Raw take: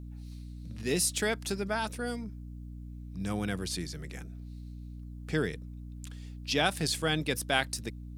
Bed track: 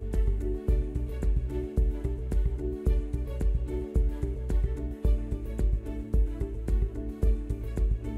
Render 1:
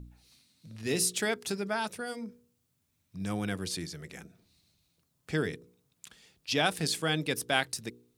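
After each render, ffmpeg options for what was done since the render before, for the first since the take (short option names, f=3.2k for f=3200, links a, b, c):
-af "bandreject=f=60:t=h:w=4,bandreject=f=120:t=h:w=4,bandreject=f=180:t=h:w=4,bandreject=f=240:t=h:w=4,bandreject=f=300:t=h:w=4,bandreject=f=360:t=h:w=4,bandreject=f=420:t=h:w=4,bandreject=f=480:t=h:w=4"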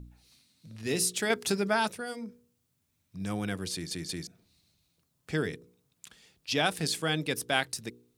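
-filter_complex "[0:a]asettb=1/sr,asplit=3[a][b][c];[a]atrim=end=1.304[d];[b]atrim=start=1.3:end=1.92,asetpts=PTS-STARTPTS,afade=t=in:d=0.004:c=qsin,afade=t=out:st=0.616:d=0.004:c=qsin,acontrast=25[e];[c]atrim=start=1.916[f];[d][e]acrossfade=d=0.004:c1=hsin:c2=qsin[g];[g][f]acrossfade=d=0.004:c1=qsin:c2=hsin,asplit=4[h][i][j][k];[h]atrim=end=3.912[l];[i]atrim=start=3.728:end=3.912[m];[j]atrim=start=3.728:end=3.912[n];[k]atrim=start=4.268[o];[l][m]acrossfade=d=0.004:c1=hsin:c2=hsin[p];[p][n]acrossfade=d=0.004:c1=hsin:c2=hsin[q];[q][o]acrossfade=d=0.004:c1=hsin:c2=hsin"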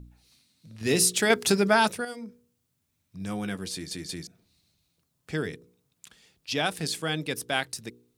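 -filter_complex "[0:a]asettb=1/sr,asplit=3[a][b][c];[a]atrim=end=0.814[d];[b]atrim=start=0.81:end=2.05,asetpts=PTS-STARTPTS,afade=t=in:d=0.004:c=qsin,afade=t=out:st=1.236:d=0.004:c=qsin,acontrast=62[e];[c]atrim=start=2.046[f];[d][e]acrossfade=d=0.004:c1=hsin:c2=qsin[g];[g][f]acrossfade=d=0.004:c1=qsin:c2=hsin,asettb=1/sr,asplit=3[h][i][j];[h]atrim=end=3.274[k];[i]atrim=start=3.27:end=4.15,asetpts=PTS-STARTPTS,afade=t=in:d=0.004:c=qsin,afade=t=out:st=0.876:d=0.004:c=qsin,asplit=2[l][m];[m]adelay=15,volume=-9dB[n];[l][n]amix=inputs=2:normalize=0,atrim=end_sample=38808[o];[j]atrim=start=4.146[p];[k][o]acrossfade=d=0.004:c1=hsin:c2=qsin[q];[q][p]acrossfade=d=0.004:c1=qsin:c2=hsin"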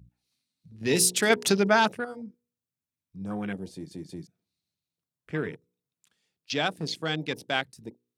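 -af "highpass=100,afwtdn=0.0126"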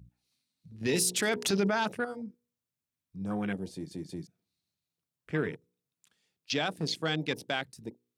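-af "alimiter=limit=-18.5dB:level=0:latency=1:release=23"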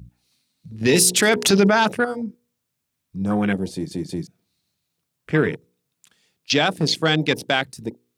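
-af "volume=12dB"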